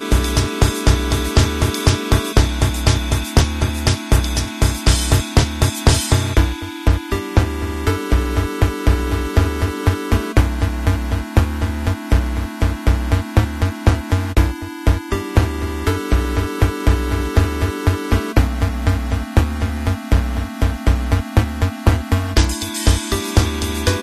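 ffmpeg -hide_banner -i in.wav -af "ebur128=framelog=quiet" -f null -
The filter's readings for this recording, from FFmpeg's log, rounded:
Integrated loudness:
  I:         -18.5 LUFS
  Threshold: -28.5 LUFS
Loudness range:
  LRA:         2.1 LU
  Threshold: -38.6 LUFS
  LRA low:   -19.4 LUFS
  LRA high:  -17.3 LUFS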